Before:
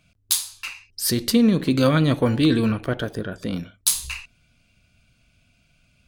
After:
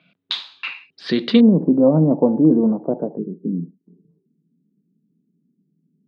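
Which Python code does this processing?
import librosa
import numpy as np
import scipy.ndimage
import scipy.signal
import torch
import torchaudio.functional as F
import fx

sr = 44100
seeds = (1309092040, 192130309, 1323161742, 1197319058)

y = fx.cheby1_bandpass(x, sr, low_hz=160.0, high_hz=fx.steps((0.0, 3800.0), (1.39, 890.0), (3.17, 420.0)), order=4)
y = y * librosa.db_to_amplitude(5.5)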